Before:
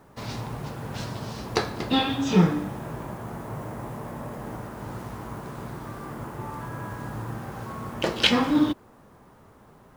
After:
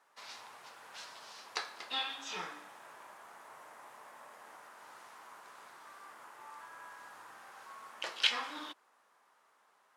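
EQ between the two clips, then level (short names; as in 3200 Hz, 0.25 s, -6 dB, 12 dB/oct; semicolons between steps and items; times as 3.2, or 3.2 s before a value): HPF 1100 Hz 12 dB/oct; LPF 11000 Hz 12 dB/oct; -8.0 dB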